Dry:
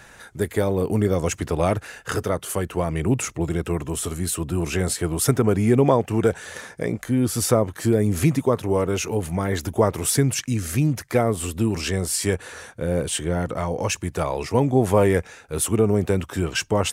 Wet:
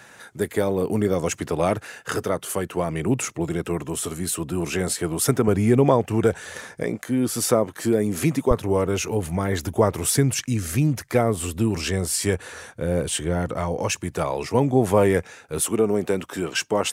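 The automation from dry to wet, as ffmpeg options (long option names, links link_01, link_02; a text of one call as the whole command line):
ffmpeg -i in.wav -af "asetnsamples=nb_out_samples=441:pad=0,asendcmd='5.48 highpass f 47;6.84 highpass f 170;8.51 highpass f 46;13.76 highpass f 99;15.6 highpass f 210',highpass=130" out.wav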